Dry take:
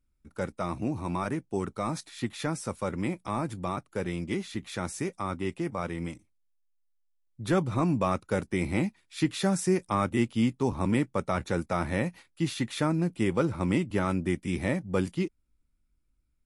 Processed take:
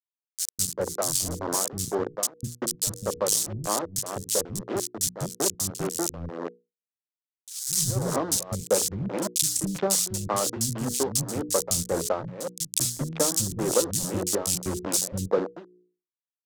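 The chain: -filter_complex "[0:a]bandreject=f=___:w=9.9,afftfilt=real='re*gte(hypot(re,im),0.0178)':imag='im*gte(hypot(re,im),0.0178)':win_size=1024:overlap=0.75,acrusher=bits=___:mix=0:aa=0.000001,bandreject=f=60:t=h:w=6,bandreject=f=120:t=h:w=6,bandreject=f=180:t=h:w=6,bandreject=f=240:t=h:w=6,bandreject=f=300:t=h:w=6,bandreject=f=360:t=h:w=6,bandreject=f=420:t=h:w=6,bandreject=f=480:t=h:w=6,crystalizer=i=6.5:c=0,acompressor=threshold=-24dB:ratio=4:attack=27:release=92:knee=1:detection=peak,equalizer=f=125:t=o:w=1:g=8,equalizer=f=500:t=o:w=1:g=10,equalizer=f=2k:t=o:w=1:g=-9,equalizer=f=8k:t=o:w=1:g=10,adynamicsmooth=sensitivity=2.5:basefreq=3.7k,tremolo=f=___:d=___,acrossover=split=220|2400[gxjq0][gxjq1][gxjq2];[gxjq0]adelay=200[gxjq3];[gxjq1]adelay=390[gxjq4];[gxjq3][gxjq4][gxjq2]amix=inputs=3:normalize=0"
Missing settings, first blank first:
1.5k, 4, 1.8, 0.9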